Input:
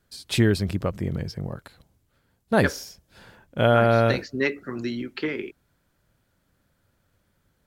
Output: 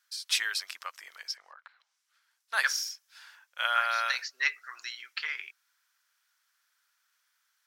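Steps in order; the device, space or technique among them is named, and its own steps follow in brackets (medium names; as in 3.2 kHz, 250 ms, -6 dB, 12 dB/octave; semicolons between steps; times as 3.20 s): headphones lying on a table (high-pass 1.2 kHz 24 dB/octave; peaking EQ 5.6 kHz +7 dB 0.43 oct); 1.35–2.53 s: low-pass that closes with the level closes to 1.5 kHz, closed at -47.5 dBFS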